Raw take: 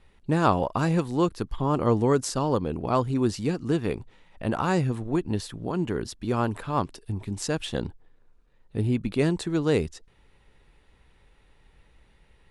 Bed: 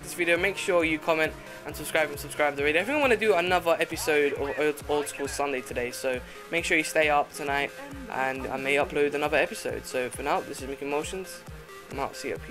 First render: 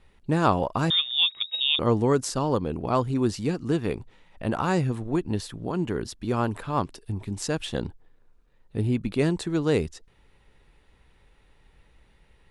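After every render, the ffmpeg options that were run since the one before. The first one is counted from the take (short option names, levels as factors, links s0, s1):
-filter_complex "[0:a]asettb=1/sr,asplit=3[s0][s1][s2];[s0]atrim=end=0.904[s3];[s1]atrim=start=0.9:end=1.79,asetpts=PTS-STARTPTS,afade=t=in:d=0.004:c=qsin,afade=t=out:st=0.886:d=0.004:c=qsin,lowpass=f=3200:t=q:w=0.5098,lowpass=f=3200:t=q:w=0.6013,lowpass=f=3200:t=q:w=0.9,lowpass=f=3200:t=q:w=2.563,afreqshift=-3800[s4];[s2]atrim=start=1.786[s5];[s3][s4]acrossfade=d=0.004:c1=hsin:c2=qsin[s6];[s6][s5]acrossfade=d=0.004:c1=qsin:c2=hsin"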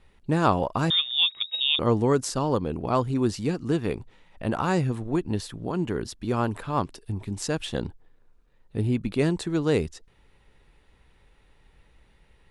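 -af anull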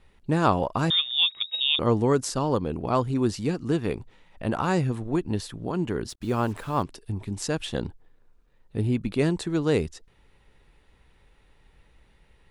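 -filter_complex "[0:a]asettb=1/sr,asplit=3[s0][s1][s2];[s0]atrim=end=6.094[s3];[s1]atrim=start=6.09:end=6.83,asetpts=PTS-STARTPTS,afade=t=in:d=0.004:c=qsin,afade=t=out:st=0.736:d=0.004:c=qsin,acrusher=bits=7:mix=0:aa=0.5[s4];[s2]atrim=start=6.826[s5];[s3][s4]acrossfade=d=0.004:c1=hsin:c2=qsin[s6];[s6][s5]acrossfade=d=0.004:c1=qsin:c2=hsin"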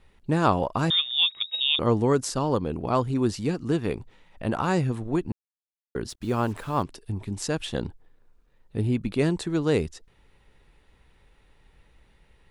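-filter_complex "[0:a]asplit=3[s0][s1][s2];[s0]atrim=end=5.32,asetpts=PTS-STARTPTS,afade=t=out:st=5.316:d=0.004:c=hsin[s3];[s1]atrim=start=5.32:end=5.95,asetpts=PTS-STARTPTS,volume=0[s4];[s2]atrim=start=5.95,asetpts=PTS-STARTPTS,afade=t=in:d=0.004:c=hsin[s5];[s3][s4][s5]concat=n=3:v=0:a=1"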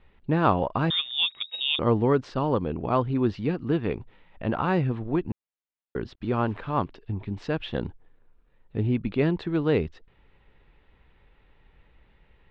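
-af "lowpass=f=3400:w=0.5412,lowpass=f=3400:w=1.3066"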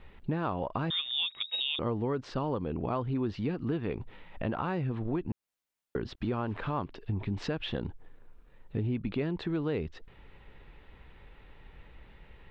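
-filter_complex "[0:a]acompressor=threshold=0.0224:ratio=4,asplit=2[s0][s1];[s1]alimiter=level_in=3.16:limit=0.0631:level=0:latency=1:release=28,volume=0.316,volume=1[s2];[s0][s2]amix=inputs=2:normalize=0"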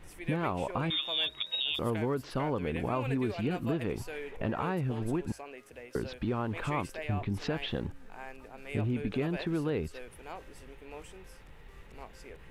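-filter_complex "[1:a]volume=0.133[s0];[0:a][s0]amix=inputs=2:normalize=0"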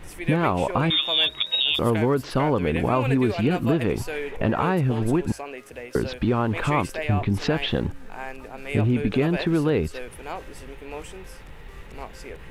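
-af "volume=3.16"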